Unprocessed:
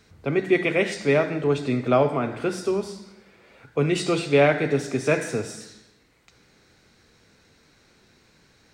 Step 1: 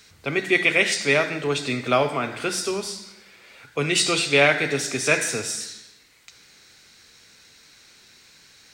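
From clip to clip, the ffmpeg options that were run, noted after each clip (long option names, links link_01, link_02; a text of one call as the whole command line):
ffmpeg -i in.wav -af "tiltshelf=frequency=1400:gain=-8.5,volume=4dB" out.wav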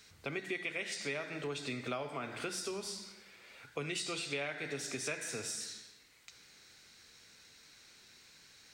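ffmpeg -i in.wav -af "acompressor=threshold=-29dB:ratio=5,volume=-7.5dB" out.wav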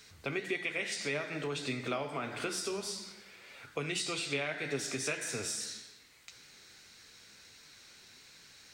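ffmpeg -i in.wav -af "flanger=delay=6.8:depth=8.3:regen=69:speed=1.7:shape=sinusoidal,volume=7.5dB" out.wav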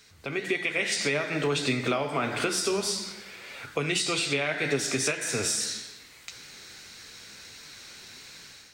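ffmpeg -i in.wav -af "alimiter=level_in=1.5dB:limit=-24dB:level=0:latency=1:release=348,volume=-1.5dB,dynaudnorm=framelen=140:gausssize=5:maxgain=10dB" out.wav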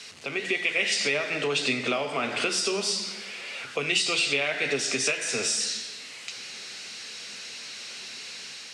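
ffmpeg -i in.wav -af "aeval=exprs='val(0)+0.5*0.00944*sgn(val(0))':channel_layout=same,highpass=frequency=150:width=0.5412,highpass=frequency=150:width=1.3066,equalizer=frequency=160:width_type=q:width=4:gain=-7,equalizer=frequency=310:width_type=q:width=4:gain=-7,equalizer=frequency=940:width_type=q:width=4:gain=-3,equalizer=frequency=1500:width_type=q:width=4:gain=-3,equalizer=frequency=2800:width_type=q:width=4:gain=7,equalizer=frequency=5000:width_type=q:width=4:gain=3,lowpass=frequency=9100:width=0.5412,lowpass=frequency=9100:width=1.3066" out.wav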